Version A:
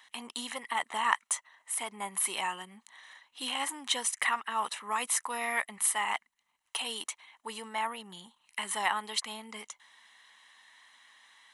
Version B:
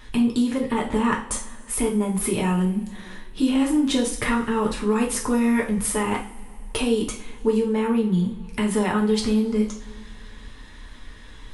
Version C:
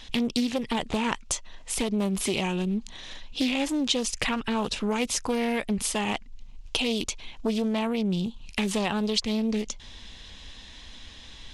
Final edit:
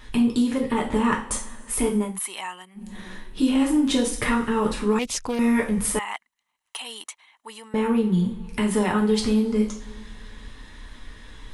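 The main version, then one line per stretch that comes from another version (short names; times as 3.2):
B
2.09–2.86 from A, crossfade 0.24 s
4.99–5.39 from C
5.99–7.74 from A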